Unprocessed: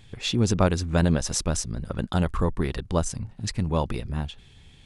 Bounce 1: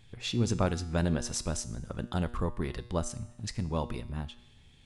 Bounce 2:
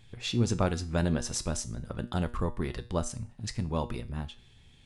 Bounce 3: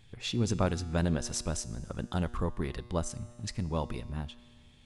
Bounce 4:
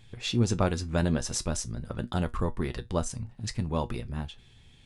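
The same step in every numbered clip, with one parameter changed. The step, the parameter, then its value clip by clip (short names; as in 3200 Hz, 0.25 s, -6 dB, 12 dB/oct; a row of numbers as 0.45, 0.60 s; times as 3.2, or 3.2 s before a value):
resonator, decay: 0.88, 0.39, 2.1, 0.16 s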